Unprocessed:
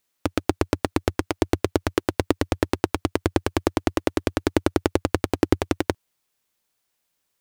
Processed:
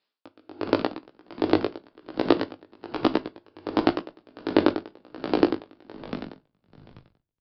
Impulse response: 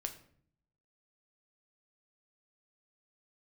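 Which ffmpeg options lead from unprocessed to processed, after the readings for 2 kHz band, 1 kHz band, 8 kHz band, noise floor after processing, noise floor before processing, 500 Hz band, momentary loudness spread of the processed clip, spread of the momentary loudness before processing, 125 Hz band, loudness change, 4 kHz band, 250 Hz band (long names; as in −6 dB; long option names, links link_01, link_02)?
−5.0 dB, −2.0 dB, below −25 dB, −81 dBFS, −76 dBFS, −2.0 dB, 20 LU, 3 LU, −12.5 dB, −1.5 dB, −3.0 dB, −1.5 dB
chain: -filter_complex "[0:a]highpass=220,equalizer=frequency=2100:width_type=o:width=0.56:gain=-4.5,flanger=delay=15.5:depth=4:speed=0.96,asplit=5[link_01][link_02][link_03][link_04][link_05];[link_02]adelay=418,afreqshift=-63,volume=-11dB[link_06];[link_03]adelay=836,afreqshift=-126,volume=-19.2dB[link_07];[link_04]adelay=1254,afreqshift=-189,volume=-27.4dB[link_08];[link_05]adelay=1672,afreqshift=-252,volume=-35.5dB[link_09];[link_01][link_06][link_07][link_08][link_09]amix=inputs=5:normalize=0,asplit=2[link_10][link_11];[1:a]atrim=start_sample=2205[link_12];[link_11][link_12]afir=irnorm=-1:irlink=0,volume=6dB[link_13];[link_10][link_13]amix=inputs=2:normalize=0,aresample=11025,aresample=44100,aeval=exprs='val(0)*pow(10,-33*(0.5-0.5*cos(2*PI*1.3*n/s))/20)':channel_layout=same,volume=-1dB"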